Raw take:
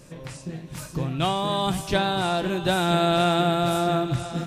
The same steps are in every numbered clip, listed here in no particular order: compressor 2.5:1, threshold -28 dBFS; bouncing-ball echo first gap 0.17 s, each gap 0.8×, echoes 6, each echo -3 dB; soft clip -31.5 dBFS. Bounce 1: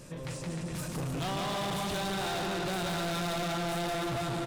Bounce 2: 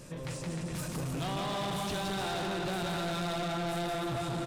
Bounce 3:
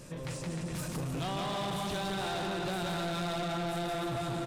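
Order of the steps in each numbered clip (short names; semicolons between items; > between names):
bouncing-ball echo > soft clip > compressor; compressor > bouncing-ball echo > soft clip; bouncing-ball echo > compressor > soft clip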